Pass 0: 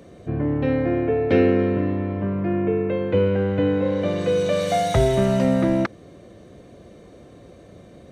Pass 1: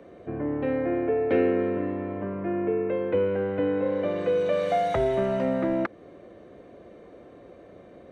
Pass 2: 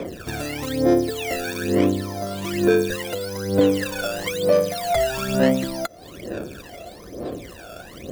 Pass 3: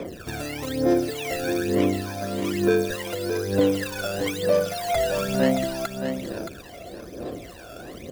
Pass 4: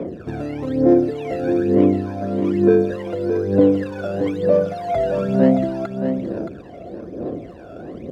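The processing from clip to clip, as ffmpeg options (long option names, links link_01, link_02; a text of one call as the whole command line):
ffmpeg -i in.wav -filter_complex "[0:a]lowshelf=frequency=140:gain=10.5,asplit=2[link_01][link_02];[link_02]acompressor=threshold=-23dB:ratio=6,volume=-1dB[link_03];[link_01][link_03]amix=inputs=2:normalize=0,acrossover=split=270 2800:gain=0.126 1 0.158[link_04][link_05][link_06];[link_04][link_05][link_06]amix=inputs=3:normalize=0,volume=-6dB" out.wav
ffmpeg -i in.wav -af "acompressor=threshold=-34dB:ratio=4,acrusher=samples=15:mix=1:aa=0.000001:lfo=1:lforange=15:lforate=0.81,aphaser=in_gain=1:out_gain=1:delay=1.5:decay=0.75:speed=1.1:type=sinusoidal,volume=8dB" out.wav
ffmpeg -i in.wav -af "aecho=1:1:622:0.422,volume=-3dB" out.wav
ffmpeg -i in.wav -af "bandpass=frequency=240:width_type=q:width=0.58:csg=0,volume=8dB" out.wav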